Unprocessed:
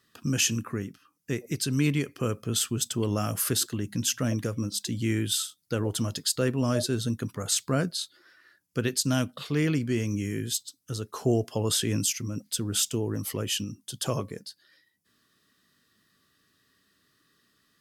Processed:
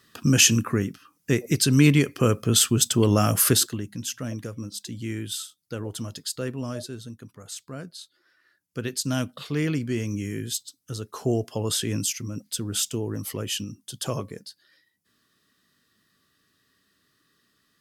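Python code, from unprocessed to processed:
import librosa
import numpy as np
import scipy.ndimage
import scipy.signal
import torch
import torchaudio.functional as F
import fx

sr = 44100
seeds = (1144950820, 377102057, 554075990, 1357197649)

y = fx.gain(x, sr, db=fx.line((3.51, 8.0), (3.94, -4.5), (6.55, -4.5), (7.15, -11.5), (7.75, -11.5), (9.21, 0.0)))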